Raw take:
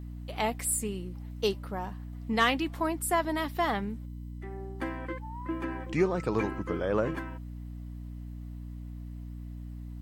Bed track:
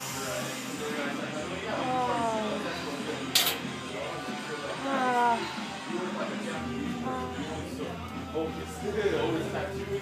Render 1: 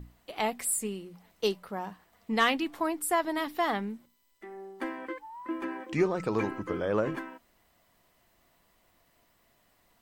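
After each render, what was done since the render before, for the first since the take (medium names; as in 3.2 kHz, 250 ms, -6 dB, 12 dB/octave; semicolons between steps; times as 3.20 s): hum notches 60/120/180/240/300 Hz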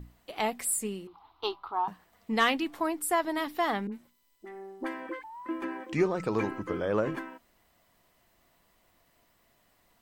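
1.07–1.88 s: FFT filter 120 Hz 0 dB, 190 Hz -25 dB, 310 Hz +2 dB, 560 Hz -14 dB, 810 Hz +11 dB, 1.2 kHz +11 dB, 1.8 kHz -11 dB, 3.8 kHz +3 dB, 7.7 kHz -29 dB, 13 kHz -15 dB; 3.87–5.24 s: phase dispersion highs, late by 51 ms, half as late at 920 Hz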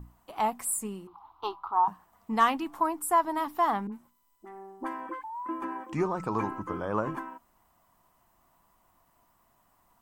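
graphic EQ 500/1000/2000/4000 Hz -7/+10/-7/-8 dB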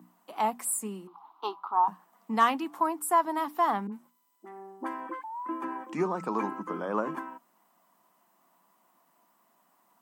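steep high-pass 170 Hz 48 dB/octave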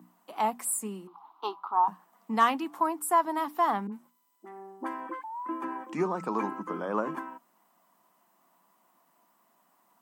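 no audible change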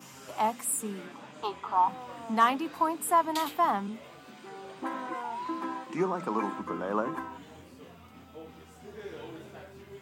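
add bed track -14.5 dB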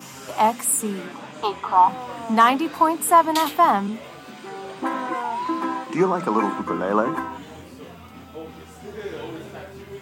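trim +9.5 dB; peak limiter -3 dBFS, peak gain reduction 3 dB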